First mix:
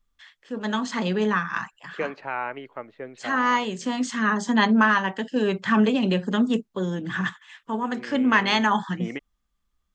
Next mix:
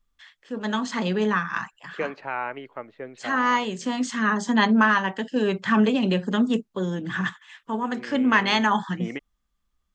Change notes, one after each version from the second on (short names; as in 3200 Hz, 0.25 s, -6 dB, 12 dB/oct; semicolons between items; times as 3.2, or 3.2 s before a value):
none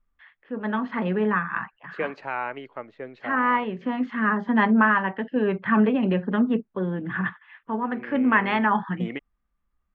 first voice: add LPF 2300 Hz 24 dB/oct